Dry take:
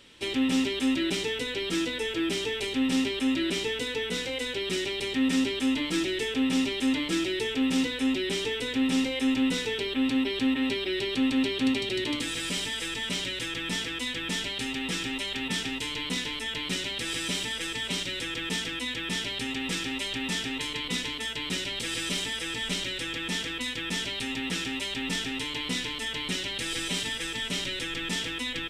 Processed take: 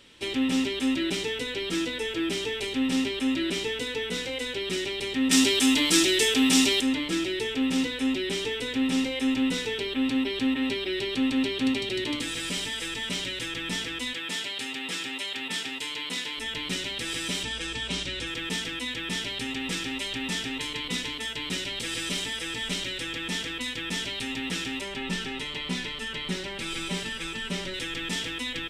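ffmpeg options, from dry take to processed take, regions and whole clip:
-filter_complex "[0:a]asettb=1/sr,asplit=3[a][b][c];[a]atrim=end=5.314[d];[b]atrim=start=5.31:end=6.81,asetpts=PTS-STARTPTS,afade=t=in:d=0.004:c=qsin,afade=t=out:st=1.496:d=0.004:c=qsin,bass=f=250:g=-5,treble=f=4k:g=11,bandreject=f=530:w=14,acontrast=47[e];[c]atrim=start=6.806[f];[d][e]acrossfade=d=0.004:c1=hsin:c2=qsin[g];[g][f]acrossfade=d=0.004:c1=qsin:c2=hsin,asettb=1/sr,asplit=3[h][i][j];[h]atrim=end=14.134[k];[i]atrim=start=14.13:end=16.38,asetpts=PTS-STARTPTS,afade=t=in:d=0.004:c=qsin,afade=t=out:st=2.246:d=0.004:c=qsin,highpass=f=470:p=1,bandreject=f=5.9k:w=16[l];[j]atrim=start=16.376[m];[k][l]acrossfade=d=0.004:c1=hsin:c2=qsin[n];[n][m]acrossfade=d=0.004:c1=qsin:c2=hsin,asettb=1/sr,asplit=3[o][p][q];[o]atrim=end=17.434[r];[p]atrim=start=17.43:end=18.27,asetpts=PTS-STARTPTS,afade=t=in:d=0.004:c=qsin,afade=t=out:st=0.836:d=0.004:c=qsin,lowpass=8.4k,equalizer=f=68:w=1.7:g=11.5,bandreject=f=2k:w=26[s];[q]atrim=start=18.266[t];[r][s]acrossfade=d=0.004:c1=hsin:c2=qsin[u];[u][t]acrossfade=d=0.004:c1=qsin:c2=hsin,asettb=1/sr,asplit=3[v][w][x];[v]atrim=end=24.814[y];[w]atrim=start=24.81:end=27.74,asetpts=PTS-STARTPTS,afade=t=in:d=0.004:c=qsin,afade=t=out:st=2.926:d=0.004:c=qsin,highshelf=f=3.9k:g=-8,aecho=1:1:5.2:0.66,atrim=end_sample=129213[z];[x]atrim=start=27.736[aa];[y][z]acrossfade=d=0.004:c1=hsin:c2=qsin[ab];[ab][aa]acrossfade=d=0.004:c1=qsin:c2=hsin"

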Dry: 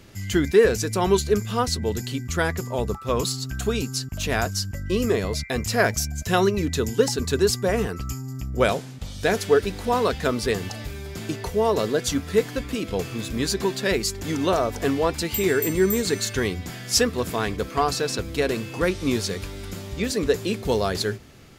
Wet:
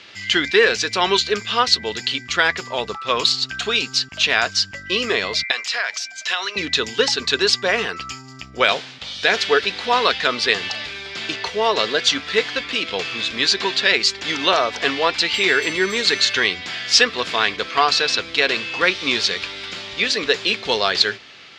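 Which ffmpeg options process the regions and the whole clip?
-filter_complex "[0:a]asettb=1/sr,asplit=3[a][b][c];[a]atrim=end=5.514[d];[b]atrim=start=5.51:end=6.56,asetpts=PTS-STARTPTS,afade=t=in:d=0.004:c=qsin,afade=t=out:st=1.046:d=0.004:c=qsin,highpass=780,acompressor=threshold=-28dB:ratio=5:attack=3.2:release=140:knee=1:detection=peak[e];[c]atrim=start=6.556[f];[d][e]acrossfade=d=0.004:c1=hsin:c2=qsin[g];[g][f]acrossfade=d=0.004:c1=qsin:c2=hsin,lowpass=f=3.8k:w=0.5412,lowpass=f=3.8k:w=1.3066,aderivative,alimiter=level_in=24.5dB:limit=-1dB:release=50:level=0:latency=1,volume=-1dB"

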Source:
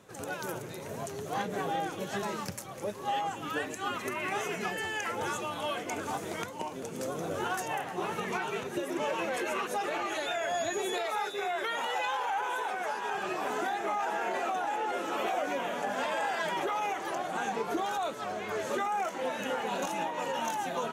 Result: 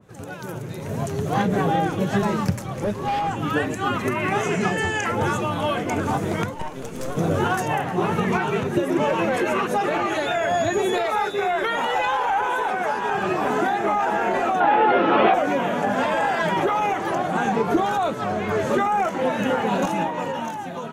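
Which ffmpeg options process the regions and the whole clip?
-filter_complex "[0:a]asettb=1/sr,asplit=3[a][b][c];[a]atrim=end=2.554[d];[b]atrim=start=2.55:end=3.39,asetpts=PTS-STARTPTS,afade=t=in:d=0.004:c=qsin,afade=t=out:st=0.836:d=0.004:c=qsin,highshelf=f=10k:g=-6,volume=31dB,asoftclip=hard,volume=-31dB[e];[c]atrim=start=3.386[f];[d][e]acrossfade=d=0.004:c1=hsin:c2=qsin[g];[g][f]acrossfade=d=0.004:c1=qsin:c2=hsin,asettb=1/sr,asplit=3[h][i][j];[h]atrim=end=4.434[k];[i]atrim=start=4.43:end=5.06,asetpts=PTS-STARTPTS,afade=t=in:d=0.004:c=qsin,afade=t=out:st=0.626:d=0.004:c=qsin,lowpass=9.7k,equalizer=f=7.4k:t=o:w=0.74:g=7,asplit=2[l][m];[m]adelay=34,volume=-10.5dB[n];[l][n]amix=inputs=2:normalize=0,atrim=end_sample=27783[o];[j]atrim=start=5.056[p];[k][o]acrossfade=d=0.004:c1=hsin:c2=qsin[q];[q][p]acrossfade=d=0.004:c1=qsin:c2=hsin,asettb=1/sr,asplit=3[r][s][t];[r]atrim=end=6.544[u];[s]atrim=start=6.54:end=7.17,asetpts=PTS-STARTPTS,afade=t=in:d=0.004:c=qsin,afade=t=out:st=0.626:d=0.004:c=qsin,highpass=f=450:p=1,aeval=exprs='(tanh(50.1*val(0)+0.65)-tanh(0.65))/50.1':c=same[v];[t]atrim=start=7.166[w];[u][v]acrossfade=d=0.004:c1=hsin:c2=qsin[x];[x][w]acrossfade=d=0.004:c1=qsin:c2=hsin,asettb=1/sr,asplit=3[y][z][aa];[y]atrim=end=14.604[ab];[z]atrim=start=14.6:end=15.34,asetpts=PTS-STARTPTS,afade=t=in:d=0.004:c=qsin,afade=t=out:st=0.736:d=0.004:c=qsin,lowpass=f=3.8k:w=0.5412,lowpass=f=3.8k:w=1.3066,lowshelf=f=120:g=-8,acontrast=39[ac];[aa]atrim=start=15.336[ad];[ab][ac]acrossfade=d=0.004:c1=hsin:c2=qsin[ae];[ae][ad]acrossfade=d=0.004:c1=qsin:c2=hsin,bass=f=250:g=11,treble=f=4k:g=-3,dynaudnorm=f=160:g=11:m=10dB,adynamicequalizer=threshold=0.0141:dfrequency=2200:dqfactor=0.7:tfrequency=2200:tqfactor=0.7:attack=5:release=100:ratio=0.375:range=2:mode=cutabove:tftype=highshelf"

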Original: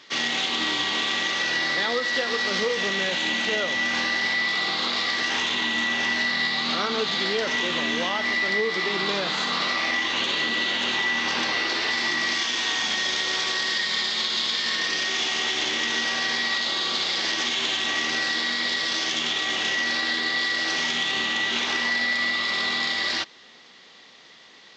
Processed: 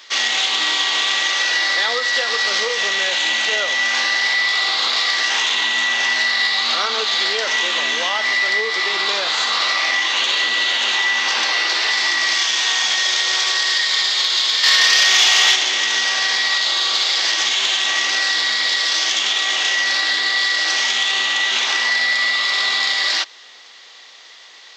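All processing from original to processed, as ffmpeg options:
-filter_complex "[0:a]asettb=1/sr,asplit=3[a][b][c];[a]atrim=end=14.634[d];[b]atrim=start=14.63:end=15.56,asetpts=PTS-STARTPTS,afade=t=in:d=0.004:c=qsin,afade=t=out:st=0.926:d=0.004:c=qsin,equalizer=f=310:t=o:w=1.2:g=-5,acontrast=48[e];[c]atrim=start=15.556[f];[d][e]acrossfade=d=0.004:c1=hsin:c2=qsin[g];[g][f]acrossfade=d=0.004:c1=qsin:c2=hsin,highpass=590,highshelf=f=7.3k:g=11.5,acontrast=43"

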